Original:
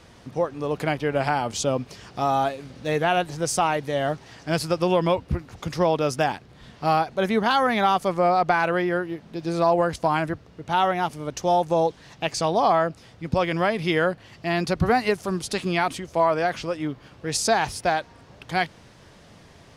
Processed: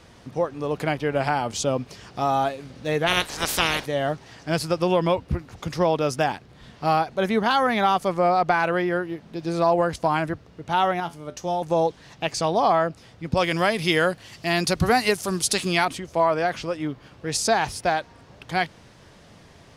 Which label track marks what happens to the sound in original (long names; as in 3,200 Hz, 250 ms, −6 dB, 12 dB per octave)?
3.060000	3.850000	ceiling on every frequency bin ceiling under each frame's peak by 28 dB
11.000000	11.620000	tuned comb filter 85 Hz, decay 0.24 s
13.370000	15.850000	parametric band 11,000 Hz +12.5 dB 2.5 octaves